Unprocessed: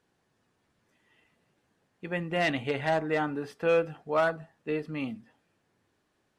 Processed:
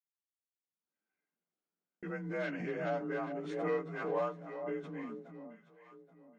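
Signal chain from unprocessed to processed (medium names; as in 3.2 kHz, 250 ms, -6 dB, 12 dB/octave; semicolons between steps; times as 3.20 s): frequency axis rescaled in octaves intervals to 89%; elliptic high-pass 160 Hz; gate -57 dBFS, range -54 dB; echo whose repeats swap between lows and highs 414 ms, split 910 Hz, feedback 54%, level -8 dB; swell ahead of each attack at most 43 dB/s; trim -8 dB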